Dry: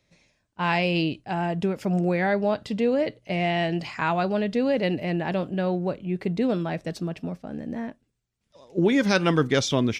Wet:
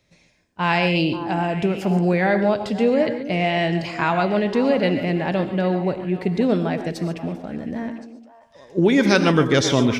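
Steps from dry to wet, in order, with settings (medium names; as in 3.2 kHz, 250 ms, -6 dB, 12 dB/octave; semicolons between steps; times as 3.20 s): repeats whose band climbs or falls 267 ms, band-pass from 330 Hz, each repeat 1.4 oct, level -8 dB; gated-style reverb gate 160 ms rising, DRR 8.5 dB; trim +4 dB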